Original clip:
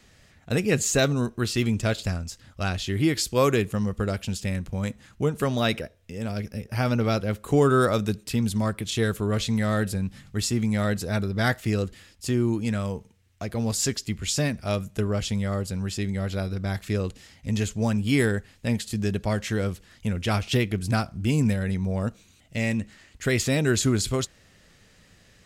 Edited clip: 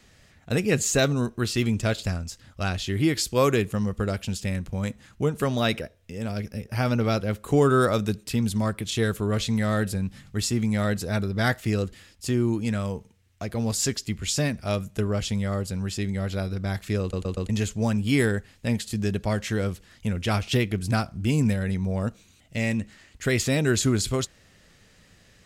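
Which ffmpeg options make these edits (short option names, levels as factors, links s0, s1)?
-filter_complex "[0:a]asplit=5[s0][s1][s2][s3][s4];[s0]atrim=end=17.132[s5];[s1]atrim=start=17.008:end=17.132[s6];[s2]atrim=start=17.008:end=17.132[s7];[s3]atrim=start=17.008:end=17.132[s8];[s4]atrim=start=17.488[s9];[s5][s6]acrossfade=d=0.004:c1=hsin:c2=hsin[s10];[s10][s7]acrossfade=d=0.004:c1=hsin:c2=hsin[s11];[s11][s8]acrossfade=d=0.004:c1=hsin:c2=hsin[s12];[s12][s9]acrossfade=d=0.004:c1=hsin:c2=hsin"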